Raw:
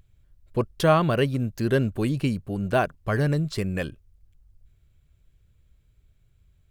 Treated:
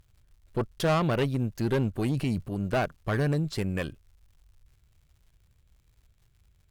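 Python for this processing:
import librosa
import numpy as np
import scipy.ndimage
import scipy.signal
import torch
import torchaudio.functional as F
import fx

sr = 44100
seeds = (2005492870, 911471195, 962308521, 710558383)

y = fx.dmg_crackle(x, sr, seeds[0], per_s=160.0, level_db=-53.0)
y = fx.transient(y, sr, attack_db=-4, sustain_db=6, at=(2.04, 2.52))
y = fx.tube_stage(y, sr, drive_db=20.0, bias=0.55)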